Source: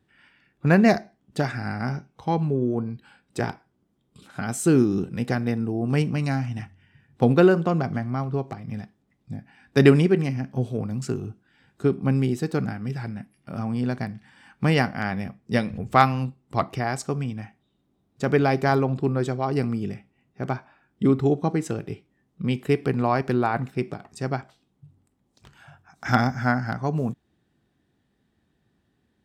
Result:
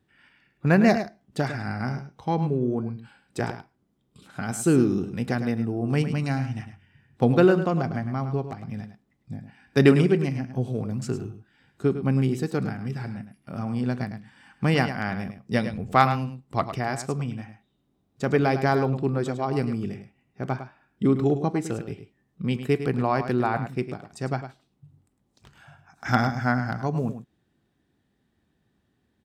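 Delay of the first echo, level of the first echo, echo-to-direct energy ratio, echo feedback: 105 ms, −10.5 dB, −10.5 dB, repeats not evenly spaced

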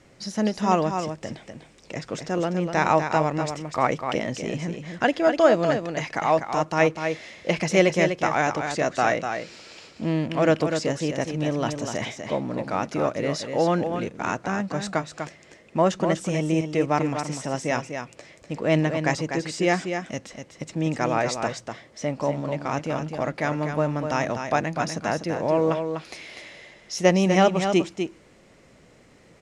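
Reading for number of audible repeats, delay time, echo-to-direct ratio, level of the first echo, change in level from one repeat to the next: 1, 247 ms, −7.0 dB, −7.0 dB, repeats not evenly spaced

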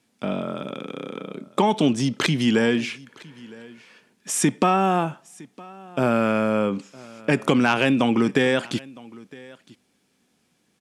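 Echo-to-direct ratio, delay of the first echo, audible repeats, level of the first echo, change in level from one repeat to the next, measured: −22.5 dB, 961 ms, 1, −22.5 dB, repeats not evenly spaced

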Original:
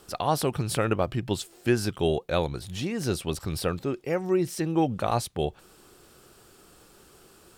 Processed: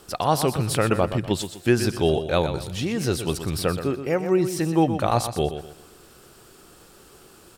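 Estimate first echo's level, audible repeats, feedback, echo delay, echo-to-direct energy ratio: −10.0 dB, 3, 33%, 123 ms, −9.5 dB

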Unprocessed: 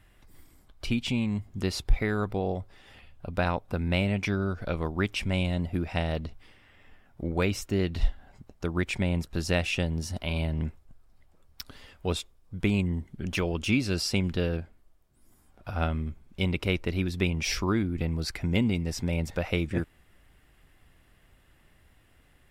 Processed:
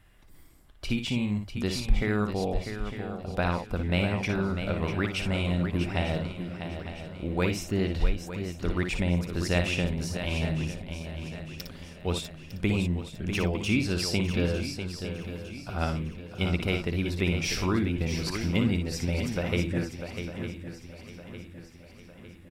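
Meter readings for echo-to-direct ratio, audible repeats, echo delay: −3.0 dB, 13, 57 ms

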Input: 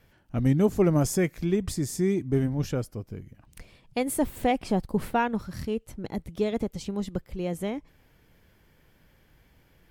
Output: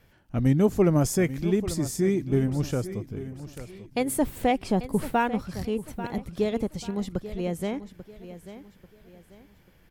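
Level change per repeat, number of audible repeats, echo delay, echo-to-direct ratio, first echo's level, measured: −9.5 dB, 3, 840 ms, −13.0 dB, −13.5 dB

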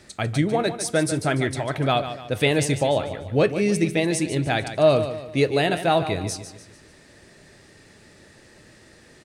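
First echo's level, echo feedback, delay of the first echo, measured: −11.0 dB, 42%, 147 ms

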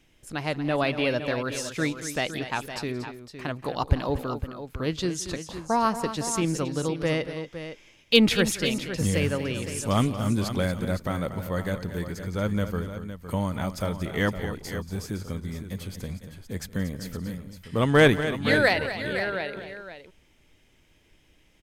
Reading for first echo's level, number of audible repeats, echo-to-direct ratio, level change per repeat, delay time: −19.5 dB, 3, −8.0 dB, repeats not evenly spaced, 175 ms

